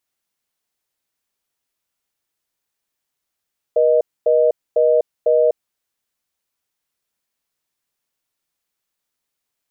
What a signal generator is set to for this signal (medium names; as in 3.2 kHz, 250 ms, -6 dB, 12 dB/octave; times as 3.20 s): call progress tone reorder tone, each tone -14 dBFS 1.76 s